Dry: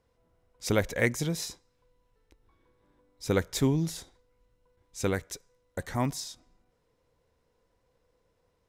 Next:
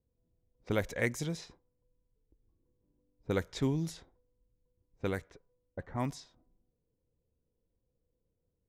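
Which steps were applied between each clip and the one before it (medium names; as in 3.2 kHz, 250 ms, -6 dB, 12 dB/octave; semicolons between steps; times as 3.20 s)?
level-controlled noise filter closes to 320 Hz, open at -24.5 dBFS; trim -5.5 dB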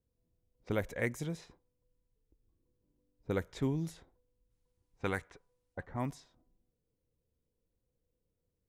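time-frequency box 4.51–5.84 s, 710–11000 Hz +7 dB; dynamic bell 5 kHz, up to -7 dB, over -57 dBFS, Q 1; trim -2 dB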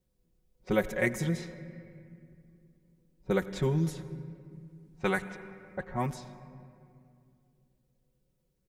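comb 5.4 ms, depth 96%; on a send at -13.5 dB: reverberation RT60 2.4 s, pre-delay 76 ms; on the sum: trim +3.5 dB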